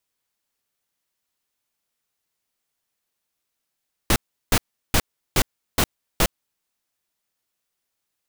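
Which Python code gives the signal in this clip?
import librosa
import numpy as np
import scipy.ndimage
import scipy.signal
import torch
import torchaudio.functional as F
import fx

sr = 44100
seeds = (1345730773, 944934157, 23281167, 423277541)

y = fx.noise_burst(sr, seeds[0], colour='pink', on_s=0.06, off_s=0.36, bursts=6, level_db=-17.0)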